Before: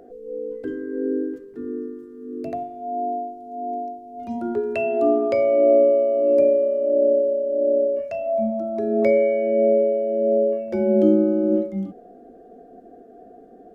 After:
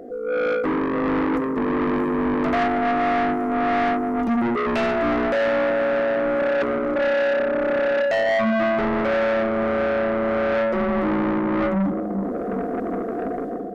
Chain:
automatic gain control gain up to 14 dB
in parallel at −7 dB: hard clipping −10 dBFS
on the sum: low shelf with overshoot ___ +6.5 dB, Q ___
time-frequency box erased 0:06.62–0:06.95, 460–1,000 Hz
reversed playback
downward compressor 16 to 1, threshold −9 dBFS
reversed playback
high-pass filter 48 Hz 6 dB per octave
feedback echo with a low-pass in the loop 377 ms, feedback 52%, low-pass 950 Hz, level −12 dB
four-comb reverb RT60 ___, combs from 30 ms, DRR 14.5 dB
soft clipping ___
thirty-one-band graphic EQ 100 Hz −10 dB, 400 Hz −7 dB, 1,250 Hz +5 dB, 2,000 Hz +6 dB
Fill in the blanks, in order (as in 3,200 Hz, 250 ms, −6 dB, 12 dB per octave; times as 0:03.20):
670 Hz, 1.5, 3.4 s, −18 dBFS